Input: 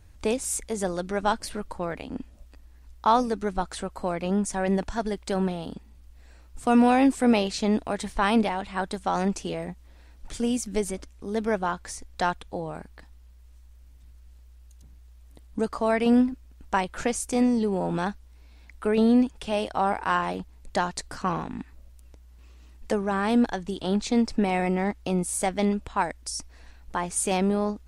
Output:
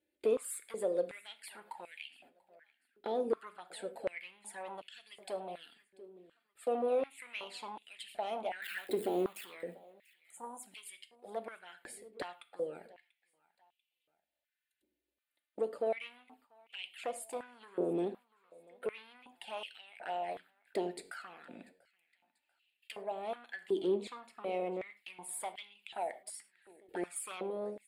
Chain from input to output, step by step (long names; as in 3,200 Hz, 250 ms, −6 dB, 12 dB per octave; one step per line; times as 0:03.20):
0:08.62–0:09.45: converter with a step at zero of −29 dBFS
0:10.26–0:10.60: healed spectral selection 1,400–6,100 Hz before
noise gate −41 dBFS, range −15 dB
dynamic equaliser 3,200 Hz, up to −5 dB, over −44 dBFS, Q 0.71
downward compressor 2 to 1, threshold −30 dBFS, peak gain reduction 8.5 dB
flanger swept by the level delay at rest 3.5 ms, full sweep at −26.5 dBFS
phaser with its sweep stopped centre 2,600 Hz, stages 4
soft clipping −27.5 dBFS, distortion −14 dB
repeating echo 690 ms, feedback 38%, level −23.5 dB
convolution reverb, pre-delay 6 ms, DRR 9 dB
high-pass on a step sequencer 2.7 Hz 390–2,800 Hz
level −1 dB